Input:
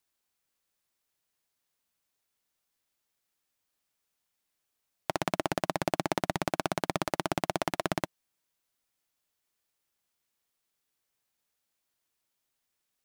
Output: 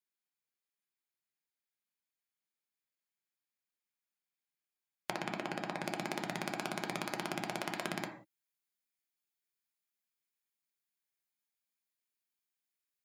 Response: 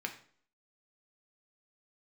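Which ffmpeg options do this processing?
-filter_complex "[1:a]atrim=start_sample=2205,afade=type=out:start_time=0.25:duration=0.01,atrim=end_sample=11466[link_01];[0:a][link_01]afir=irnorm=-1:irlink=0,acompressor=threshold=-34dB:ratio=6,asetnsamples=nb_out_samples=441:pad=0,asendcmd='5.84 highshelf g 10.5',highshelf=frequency=4500:gain=5,afftdn=noise_reduction=14:noise_floor=-54"

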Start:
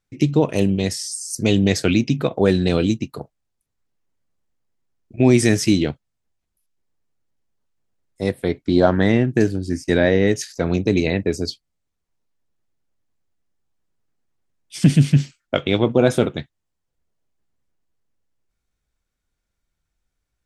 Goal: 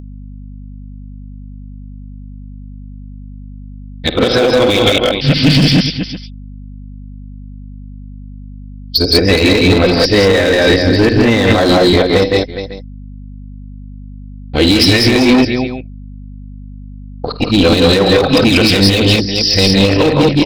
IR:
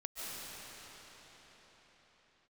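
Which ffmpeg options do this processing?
-filter_complex "[0:a]areverse,aresample=11025,aresample=44100,agate=range=-50dB:threshold=-38dB:ratio=16:detection=peak,aecho=1:1:3.9:0.37,asubboost=boost=5:cutoff=76,asplit=2[link_01][link_02];[link_02]aecho=0:1:51|78|163|191|414|551:0.211|0.141|0.531|0.631|0.224|0.1[link_03];[link_01][link_03]amix=inputs=2:normalize=0,aeval=exprs='val(0)+0.0141*(sin(2*PI*50*n/s)+sin(2*PI*2*50*n/s)/2+sin(2*PI*3*50*n/s)/3+sin(2*PI*4*50*n/s)/4+sin(2*PI*5*50*n/s)/5)':channel_layout=same,bass=frequency=250:gain=-6,treble=frequency=4000:gain=13,asplit=2[link_04][link_05];[link_05]aeval=exprs='0.112*(abs(mod(val(0)/0.112+3,4)-2)-1)':channel_layout=same,volume=-4.5dB[link_06];[link_04][link_06]amix=inputs=2:normalize=0,alimiter=level_in=10.5dB:limit=-1dB:release=50:level=0:latency=1,volume=-1dB"

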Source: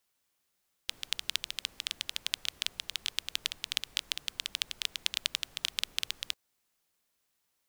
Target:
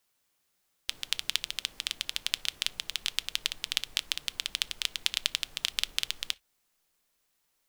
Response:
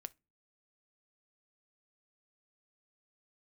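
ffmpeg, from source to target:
-filter_complex "[0:a]asplit=2[link_01][link_02];[link_02]asubboost=boost=3:cutoff=52[link_03];[1:a]atrim=start_sample=2205,afade=type=out:start_time=0.14:duration=0.01,atrim=end_sample=6615[link_04];[link_03][link_04]afir=irnorm=-1:irlink=0,volume=12dB[link_05];[link_01][link_05]amix=inputs=2:normalize=0,volume=-7.5dB"

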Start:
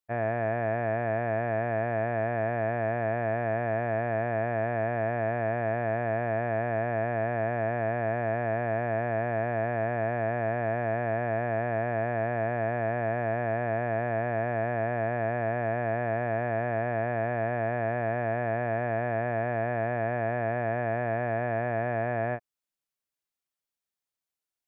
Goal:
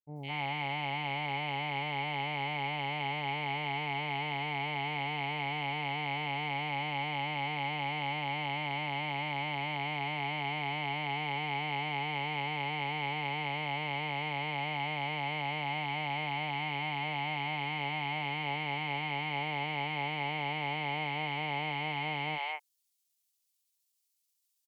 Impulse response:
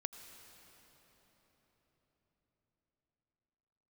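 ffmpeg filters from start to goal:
-filter_complex "[0:a]asetrate=55563,aresample=44100,atempo=0.793701,acrossover=split=530|2500[link_01][link_02][link_03];[link_03]adelay=160[link_04];[link_02]adelay=210[link_05];[link_01][link_05][link_04]amix=inputs=3:normalize=0,aexciter=amount=7.9:drive=3.5:freq=2200,volume=-7dB"

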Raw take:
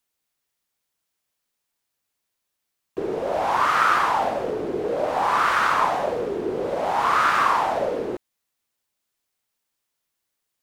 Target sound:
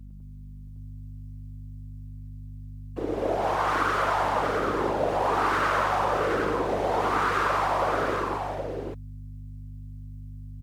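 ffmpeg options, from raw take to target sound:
ffmpeg -i in.wav -filter_complex "[0:a]acompressor=threshold=-22dB:ratio=6,afftfilt=real='hypot(re,im)*cos(2*PI*random(0))':imag='hypot(re,im)*sin(2*PI*random(1))':win_size=512:overlap=0.75,aeval=exprs='val(0)+0.00562*(sin(2*PI*50*n/s)+sin(2*PI*2*50*n/s)/2+sin(2*PI*3*50*n/s)/3+sin(2*PI*4*50*n/s)/4+sin(2*PI*5*50*n/s)/5)':channel_layout=same,asplit=2[link_01][link_02];[link_02]aecho=0:1:114|212|415|682|772:0.531|0.708|0.106|0.316|0.631[link_03];[link_01][link_03]amix=inputs=2:normalize=0,volume=3.5dB" out.wav

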